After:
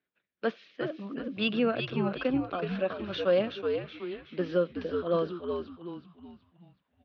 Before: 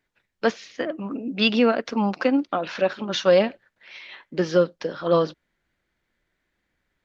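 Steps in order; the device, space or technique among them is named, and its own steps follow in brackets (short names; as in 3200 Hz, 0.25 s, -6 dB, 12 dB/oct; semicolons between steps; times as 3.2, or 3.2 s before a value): frequency-shifting delay pedal into a guitar cabinet (frequency-shifting echo 0.373 s, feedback 42%, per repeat -87 Hz, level -5.5 dB; speaker cabinet 110–3600 Hz, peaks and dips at 110 Hz -9 dB, 880 Hz -8 dB, 2000 Hz -6 dB); gain -7.5 dB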